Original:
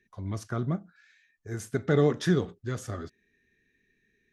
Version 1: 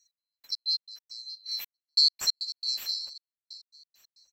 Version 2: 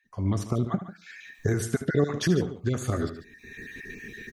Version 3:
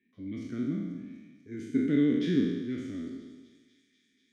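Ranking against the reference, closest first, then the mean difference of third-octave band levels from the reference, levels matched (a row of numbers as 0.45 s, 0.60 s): 2, 3, 1; 6.0 dB, 8.5 dB, 20.0 dB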